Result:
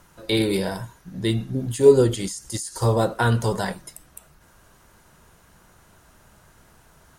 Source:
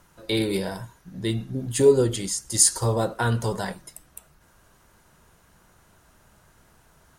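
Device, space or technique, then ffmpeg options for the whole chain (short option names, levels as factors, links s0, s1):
de-esser from a sidechain: -filter_complex "[0:a]asplit=2[s0][s1];[s1]highpass=f=5100:w=0.5412,highpass=f=5100:w=1.3066,apad=whole_len=316893[s2];[s0][s2]sidechaincompress=threshold=0.0251:ratio=8:attack=1.3:release=93,volume=1.5"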